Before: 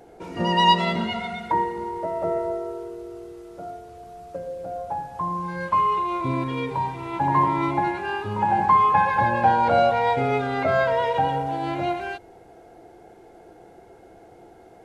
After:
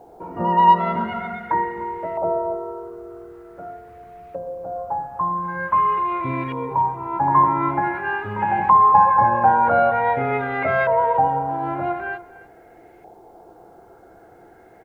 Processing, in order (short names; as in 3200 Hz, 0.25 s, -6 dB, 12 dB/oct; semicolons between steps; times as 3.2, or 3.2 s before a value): LFO low-pass saw up 0.46 Hz 890–2300 Hz; echo 0.294 s -18 dB; bit-crush 11-bit; gain -1 dB